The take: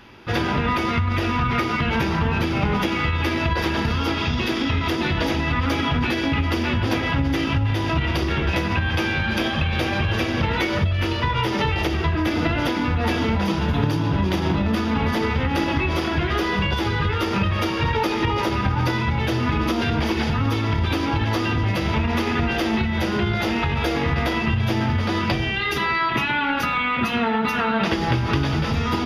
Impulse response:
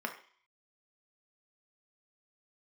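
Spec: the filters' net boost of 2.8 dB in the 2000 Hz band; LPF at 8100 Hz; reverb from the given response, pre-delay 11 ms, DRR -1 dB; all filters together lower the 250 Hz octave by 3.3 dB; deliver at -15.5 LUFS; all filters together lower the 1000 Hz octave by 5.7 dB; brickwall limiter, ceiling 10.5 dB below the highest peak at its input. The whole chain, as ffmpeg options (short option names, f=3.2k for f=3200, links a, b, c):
-filter_complex "[0:a]lowpass=8.1k,equalizer=f=250:t=o:g=-4,equalizer=f=1k:t=o:g=-9,equalizer=f=2k:t=o:g=6,alimiter=limit=-18dB:level=0:latency=1,asplit=2[a][b];[1:a]atrim=start_sample=2205,adelay=11[c];[b][c]afir=irnorm=-1:irlink=0,volume=-3.5dB[d];[a][d]amix=inputs=2:normalize=0,volume=8dB"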